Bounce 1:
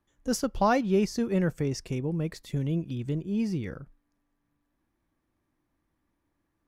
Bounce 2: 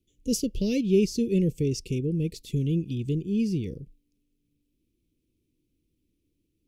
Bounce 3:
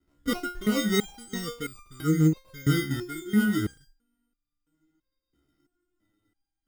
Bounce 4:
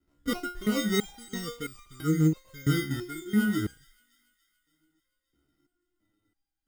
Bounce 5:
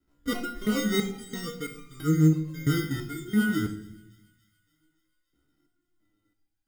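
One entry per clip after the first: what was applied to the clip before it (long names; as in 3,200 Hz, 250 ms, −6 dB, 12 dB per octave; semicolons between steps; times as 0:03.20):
elliptic band-stop filter 450–2,600 Hz, stop band 40 dB; level +3.5 dB
hollow resonant body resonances 300/750/1,600 Hz, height 8 dB; decimation without filtering 26×; step-sequenced resonator 3 Hz 70–1,200 Hz; level +9 dB
delay with a high-pass on its return 285 ms, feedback 60%, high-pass 2,400 Hz, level −22 dB; level −2 dB
rectangular room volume 210 cubic metres, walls mixed, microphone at 0.44 metres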